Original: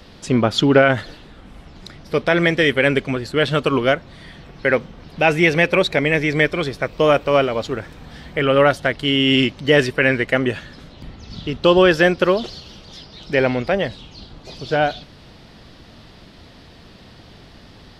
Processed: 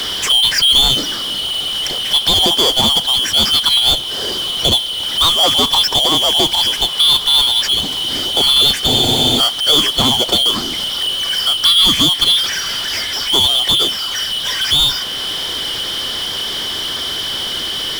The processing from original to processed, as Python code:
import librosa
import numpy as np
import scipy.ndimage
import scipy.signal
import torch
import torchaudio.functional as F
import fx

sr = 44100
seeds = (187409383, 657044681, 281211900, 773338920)

y = fx.band_shuffle(x, sr, order='2413')
y = fx.power_curve(y, sr, exponent=0.5)
y = fx.spec_freeze(y, sr, seeds[0], at_s=8.9, hold_s=0.5)
y = fx.band_squash(y, sr, depth_pct=40)
y = F.gain(torch.from_numpy(y), -3.0).numpy()